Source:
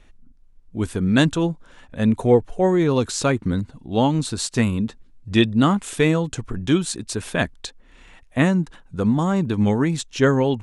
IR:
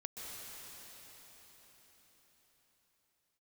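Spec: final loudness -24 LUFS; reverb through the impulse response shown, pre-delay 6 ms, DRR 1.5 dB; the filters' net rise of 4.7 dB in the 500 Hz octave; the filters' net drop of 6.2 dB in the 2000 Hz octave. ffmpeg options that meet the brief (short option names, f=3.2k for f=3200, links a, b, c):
-filter_complex "[0:a]equalizer=f=500:t=o:g=6,equalizer=f=2k:t=o:g=-8.5,asplit=2[a][b];[1:a]atrim=start_sample=2205,adelay=6[c];[b][c]afir=irnorm=-1:irlink=0,volume=-1dB[d];[a][d]amix=inputs=2:normalize=0,volume=-7.5dB"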